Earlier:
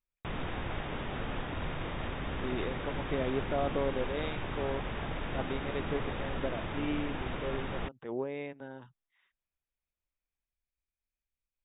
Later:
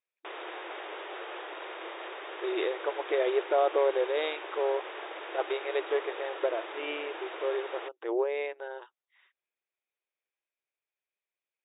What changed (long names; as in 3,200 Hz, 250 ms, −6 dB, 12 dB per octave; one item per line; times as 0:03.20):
speech +7.5 dB
master: add linear-phase brick-wall high-pass 320 Hz